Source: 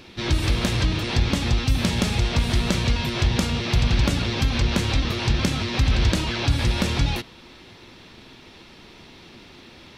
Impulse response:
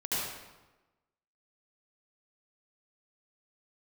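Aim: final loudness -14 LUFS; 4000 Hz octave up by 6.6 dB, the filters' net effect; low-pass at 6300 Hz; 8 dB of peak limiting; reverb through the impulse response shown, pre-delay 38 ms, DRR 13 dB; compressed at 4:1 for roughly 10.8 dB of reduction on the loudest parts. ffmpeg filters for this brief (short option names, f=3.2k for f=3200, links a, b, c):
-filter_complex "[0:a]lowpass=6.3k,equalizer=f=4k:t=o:g=8.5,acompressor=threshold=-28dB:ratio=4,alimiter=limit=-21.5dB:level=0:latency=1,asplit=2[a][b];[1:a]atrim=start_sample=2205,adelay=38[c];[b][c]afir=irnorm=-1:irlink=0,volume=-20dB[d];[a][d]amix=inputs=2:normalize=0,volume=17.5dB"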